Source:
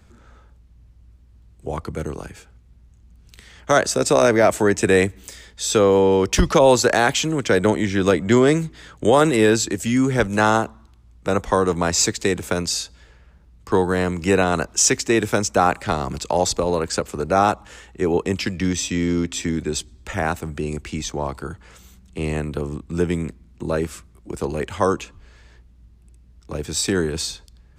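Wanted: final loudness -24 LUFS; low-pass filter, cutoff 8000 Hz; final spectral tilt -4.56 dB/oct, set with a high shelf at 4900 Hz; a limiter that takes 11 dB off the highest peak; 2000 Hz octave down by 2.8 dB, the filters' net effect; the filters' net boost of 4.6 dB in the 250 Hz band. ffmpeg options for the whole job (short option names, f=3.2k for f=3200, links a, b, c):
-af "lowpass=8k,equalizer=f=250:t=o:g=6,equalizer=f=2k:t=o:g=-4.5,highshelf=f=4.9k:g=4.5,volume=-1dB,alimiter=limit=-13dB:level=0:latency=1"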